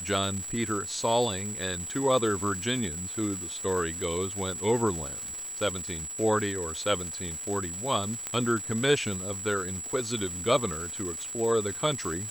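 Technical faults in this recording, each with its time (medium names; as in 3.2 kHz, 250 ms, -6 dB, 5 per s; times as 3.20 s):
crackle 510 per s -34 dBFS
whine 7.8 kHz -35 dBFS
8.27 s: pop -15 dBFS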